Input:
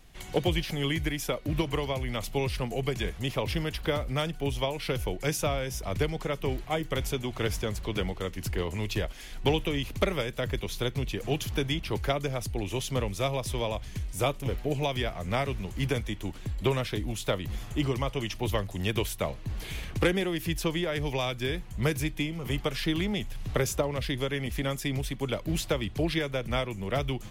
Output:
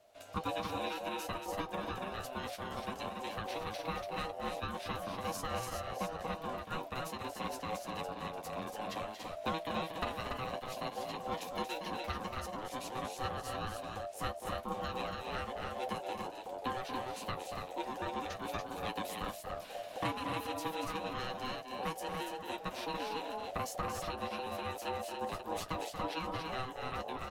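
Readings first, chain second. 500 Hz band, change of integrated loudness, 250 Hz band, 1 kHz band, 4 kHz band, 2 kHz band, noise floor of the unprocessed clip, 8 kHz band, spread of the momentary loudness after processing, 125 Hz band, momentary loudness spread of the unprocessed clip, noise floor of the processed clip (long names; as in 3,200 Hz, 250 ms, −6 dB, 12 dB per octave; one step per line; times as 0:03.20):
−9.5 dB, −9.0 dB, −11.5 dB, 0.0 dB, −10.0 dB, −8.5 dB, −42 dBFS, −9.5 dB, 3 LU, −16.5 dB, 4 LU, −48 dBFS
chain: loudspeakers that aren't time-aligned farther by 80 metres −8 dB, 98 metres −4 dB
ring modulation 640 Hz
flanger 0.2 Hz, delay 10 ms, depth 1 ms, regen −36%
level −4.5 dB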